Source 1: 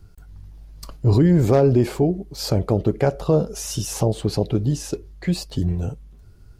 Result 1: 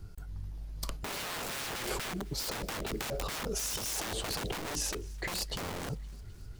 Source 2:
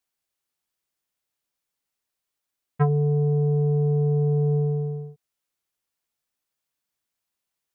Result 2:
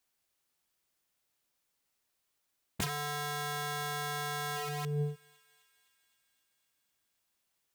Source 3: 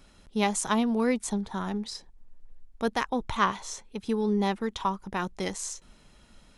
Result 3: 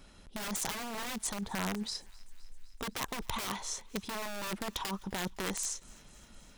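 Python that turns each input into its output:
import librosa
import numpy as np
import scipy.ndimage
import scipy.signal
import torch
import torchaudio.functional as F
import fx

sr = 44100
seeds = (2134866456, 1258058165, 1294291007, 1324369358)

y = (np.mod(10.0 ** (23.0 / 20.0) * x + 1.0, 2.0) - 1.0) / 10.0 ** (23.0 / 20.0)
y = fx.over_compress(y, sr, threshold_db=-33.0, ratio=-1.0)
y = fx.echo_thinned(y, sr, ms=257, feedback_pct=73, hz=1000.0, wet_db=-23.5)
y = y * librosa.db_to_amplitude(-3.0)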